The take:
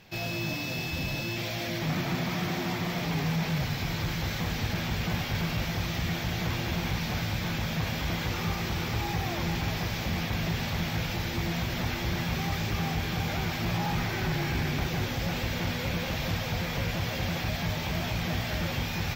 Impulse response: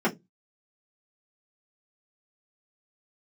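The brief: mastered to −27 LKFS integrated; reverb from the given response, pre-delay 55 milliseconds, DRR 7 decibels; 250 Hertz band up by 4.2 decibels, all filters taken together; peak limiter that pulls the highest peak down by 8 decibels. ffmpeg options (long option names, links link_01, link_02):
-filter_complex "[0:a]equalizer=frequency=250:width_type=o:gain=6.5,alimiter=limit=-23.5dB:level=0:latency=1,asplit=2[link_01][link_02];[1:a]atrim=start_sample=2205,adelay=55[link_03];[link_02][link_03]afir=irnorm=-1:irlink=0,volume=-20dB[link_04];[link_01][link_04]amix=inputs=2:normalize=0,volume=3dB"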